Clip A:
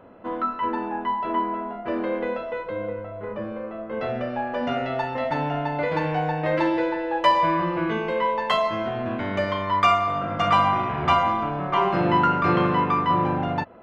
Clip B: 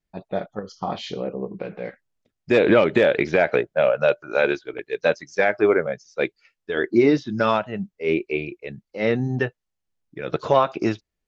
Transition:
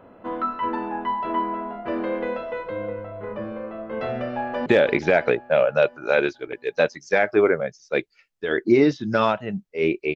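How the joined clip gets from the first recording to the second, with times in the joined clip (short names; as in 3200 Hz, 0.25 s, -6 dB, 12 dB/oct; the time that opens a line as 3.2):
clip A
4.36–4.66 echo throw 0.33 s, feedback 55%, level -7.5 dB
4.66 switch to clip B from 2.92 s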